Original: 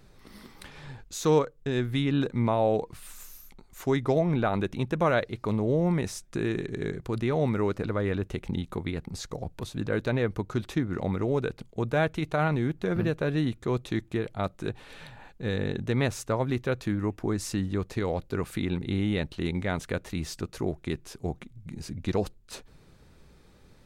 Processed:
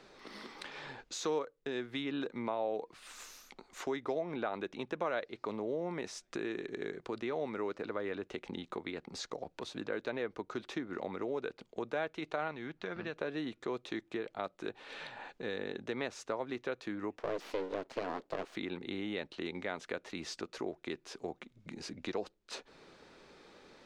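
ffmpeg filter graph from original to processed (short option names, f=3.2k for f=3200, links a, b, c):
-filter_complex "[0:a]asettb=1/sr,asplit=3[a][b][c];[a]atrim=end=12.514[d];[b]atrim=start=12.51:end=13.16,asetpts=PTS-STARTPTS,afade=t=in:d=0.004:c=qsin,afade=t=out:st=0.646:d=0.004:c=qsin,lowpass=5.9k,equalizer=f=390:t=o:w=1.9:g=-7.5[e];[c]atrim=start=13.156[f];[d][e]acrossfade=d=0.004:c1=hsin:c2=qsin[g];[g][f]acrossfade=d=0.004:c1=qsin:c2=hsin,asettb=1/sr,asplit=3[h][i][j];[h]atrim=end=17.184[k];[i]atrim=start=17.18:end=18.56,asetpts=PTS-STARTPTS,afade=t=in:d=0.004:c=qsin,afade=t=out:st=1.376:d=0.004:c=qsin,highpass=f=49:p=1,equalizer=f=230:t=o:w=0.79:g=13.5,aeval=exprs='abs(val(0))':c=same[l];[j]atrim=start=18.556[m];[k][l]acrossfade=d=0.004:c1=hsin:c2=qsin[n];[n][m]acrossfade=d=0.004:c1=qsin:c2=hsin,acrossover=split=260 6700:gain=0.0708 1 0.0794[o][p][q];[o][p][q]amix=inputs=3:normalize=0,acompressor=threshold=-49dB:ratio=2,volume=5dB"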